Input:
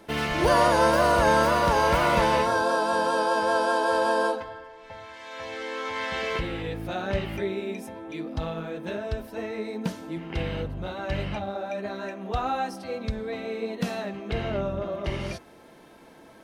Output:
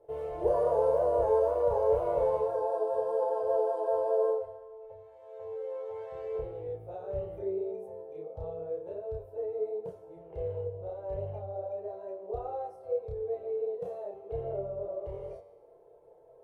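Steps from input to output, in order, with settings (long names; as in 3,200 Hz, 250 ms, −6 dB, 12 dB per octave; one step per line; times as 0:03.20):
drawn EQ curve 140 Hz 0 dB, 240 Hz −26 dB, 440 Hz +14 dB, 740 Hz +4 dB, 1,600 Hz −18 dB, 5,100 Hz −24 dB, 8,600 Hz −14 dB
multi-voice chorus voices 2, 0.31 Hz, delay 30 ms, depth 2.2 ms
tuned comb filter 96 Hz, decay 1.2 s, harmonics all, mix 70%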